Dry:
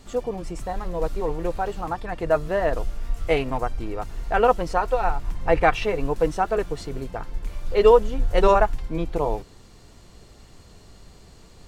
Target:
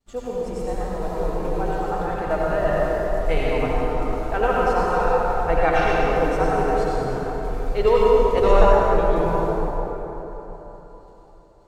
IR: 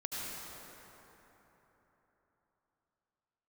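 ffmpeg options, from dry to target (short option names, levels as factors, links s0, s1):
-filter_complex "[0:a]agate=range=0.0224:threshold=0.0178:ratio=3:detection=peak[s0];[1:a]atrim=start_sample=2205[s1];[s0][s1]afir=irnorm=-1:irlink=0,volume=0.891"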